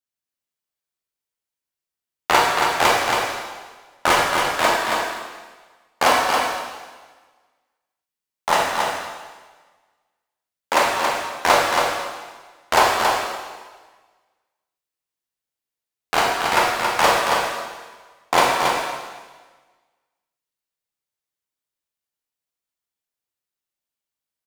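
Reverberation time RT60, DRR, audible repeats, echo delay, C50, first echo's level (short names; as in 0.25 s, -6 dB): 1.4 s, -4.5 dB, 1, 0.276 s, -1.5 dB, -4.5 dB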